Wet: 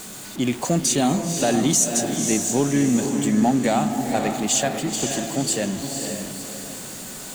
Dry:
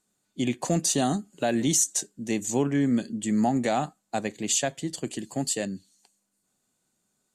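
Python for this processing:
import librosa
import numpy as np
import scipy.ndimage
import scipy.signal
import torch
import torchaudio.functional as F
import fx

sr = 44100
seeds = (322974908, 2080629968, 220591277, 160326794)

p1 = x + 0.5 * 10.0 ** (-34.0 / 20.0) * np.sign(x)
p2 = p1 + fx.echo_diffused(p1, sr, ms=513, feedback_pct=42, wet_db=-5.0, dry=0)
y = p2 * 10.0 ** (3.0 / 20.0)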